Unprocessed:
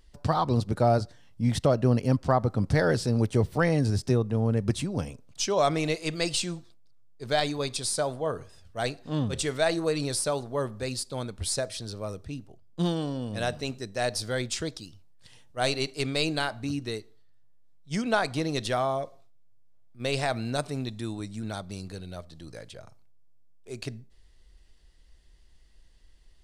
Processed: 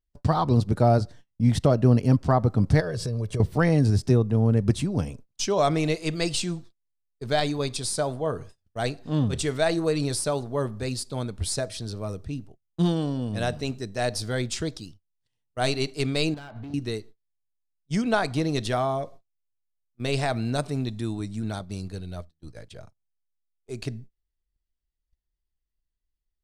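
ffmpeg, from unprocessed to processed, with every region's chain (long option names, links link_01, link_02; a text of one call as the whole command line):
ffmpeg -i in.wav -filter_complex "[0:a]asettb=1/sr,asplit=3[link_01][link_02][link_03];[link_01]atrim=end=2.804[link_04];[link_02]atrim=start=2.8:end=3.4,asetpts=PTS-STARTPTS,afade=type=in:duration=0.004:curve=qsin,afade=type=out:start_time=0.596:duration=0.004:curve=qsin,aecho=1:1:1.8:0.59,atrim=end_sample=26460,acompressor=threshold=-28dB:ratio=10:attack=3.2:release=140:knee=1:detection=peak[link_05];[link_03]atrim=start=3.396[link_06];[link_04][link_05]acrossfade=duration=0.004:curve1=hsin:curve2=qsin[link_07];[link_07][link_06]acrossfade=duration=0.004:curve1=qsin:curve2=hsin,asettb=1/sr,asplit=3[link_08][link_09][link_10];[link_08]atrim=end=16.344[link_11];[link_09]atrim=start=16.34:end=16.74,asetpts=PTS-STARTPTS,afade=type=in:duration=0.004:curve=qsin,afade=type=out:start_time=0.396:duration=0.004:curve=qsin,lowpass=2900,acompressor=threshold=-36dB:ratio=5:attack=3.2:release=140:knee=1:detection=peak,asoftclip=type=hard:threshold=-39dB[link_12];[link_10]atrim=start=16.736[link_13];[link_11][link_12]acrossfade=duration=0.004:curve1=hsin:curve2=qsin[link_14];[link_14][link_13]acrossfade=duration=0.004:curve1=qsin:curve2=hsin,asettb=1/sr,asplit=3[link_15][link_16][link_17];[link_15]atrim=end=21.594[link_18];[link_16]atrim=start=21.59:end=22.67,asetpts=PTS-STARTPTS,afade=type=in:duration=0.004:curve=qsin,afade=type=out:start_time=1.076:duration=0.004:curve=qsin,asubboost=boost=3:cutoff=130,agate=range=-33dB:threshold=-39dB:ratio=3:release=100:detection=peak[link_19];[link_17]atrim=start=22.666[link_20];[link_18][link_19]acrossfade=duration=0.004:curve1=hsin:curve2=qsin[link_21];[link_21][link_20]acrossfade=duration=0.004:curve1=qsin:curve2=hsin,bandreject=frequency=530:width=15,agate=range=-31dB:threshold=-46dB:ratio=16:detection=peak,lowshelf=frequency=440:gain=5.5" out.wav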